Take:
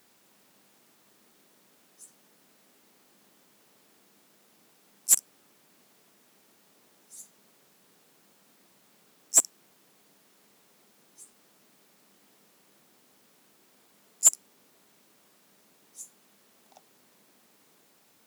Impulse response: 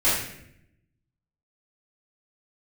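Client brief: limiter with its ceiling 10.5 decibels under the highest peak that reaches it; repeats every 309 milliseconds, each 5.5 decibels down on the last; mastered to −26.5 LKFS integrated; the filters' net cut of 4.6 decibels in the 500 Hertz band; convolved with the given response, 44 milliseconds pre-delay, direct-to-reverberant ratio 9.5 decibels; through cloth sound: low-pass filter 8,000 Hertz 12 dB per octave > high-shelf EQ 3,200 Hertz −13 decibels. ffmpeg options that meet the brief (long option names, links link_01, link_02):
-filter_complex "[0:a]equalizer=frequency=500:width_type=o:gain=-6,alimiter=limit=-16.5dB:level=0:latency=1,aecho=1:1:309|618|927|1236|1545|1854|2163:0.531|0.281|0.149|0.079|0.0419|0.0222|0.0118,asplit=2[link_01][link_02];[1:a]atrim=start_sample=2205,adelay=44[link_03];[link_02][link_03]afir=irnorm=-1:irlink=0,volume=-25dB[link_04];[link_01][link_04]amix=inputs=2:normalize=0,lowpass=8000,highshelf=frequency=3200:gain=-13,volume=23dB"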